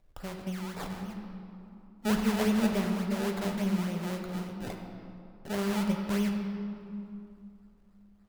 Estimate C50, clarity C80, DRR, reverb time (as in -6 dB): 4.0 dB, 5.0 dB, 2.0 dB, 2.6 s